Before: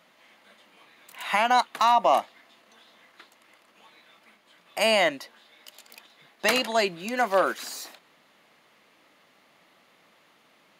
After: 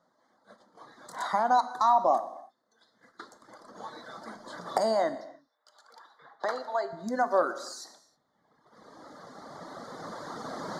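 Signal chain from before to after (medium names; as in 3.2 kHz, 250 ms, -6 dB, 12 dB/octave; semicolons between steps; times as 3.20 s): recorder AGC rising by 8.8 dB/s; reverb removal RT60 1.9 s; gate -52 dBFS, range -10 dB; 5.15–6.93 s: three-band isolator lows -20 dB, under 530 Hz, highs -15 dB, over 3.3 kHz; in parallel at -2 dB: compression, threshold -36 dBFS, peak gain reduction 18 dB; on the sum: Butterworth band-stop 2.6 kHz, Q 0.83; distance through air 85 m; gated-style reverb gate 340 ms falling, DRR 10 dB; trim -2.5 dB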